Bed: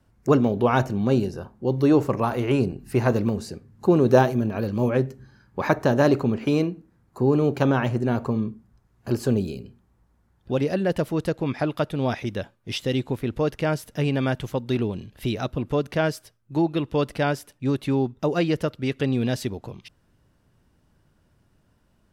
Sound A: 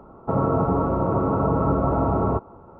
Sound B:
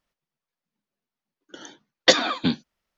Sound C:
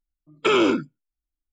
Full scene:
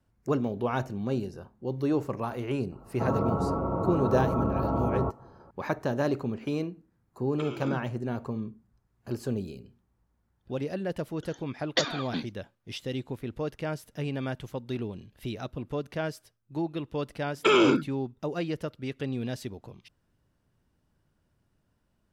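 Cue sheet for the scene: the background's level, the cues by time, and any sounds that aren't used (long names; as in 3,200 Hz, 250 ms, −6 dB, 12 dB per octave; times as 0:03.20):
bed −9 dB
0:02.72: mix in A −7 dB + notch filter 1,700 Hz
0:06.95: mix in C −10 dB + compressor whose output falls as the input rises −24 dBFS, ratio −0.5
0:09.69: mix in B −10.5 dB
0:17.00: mix in C −2 dB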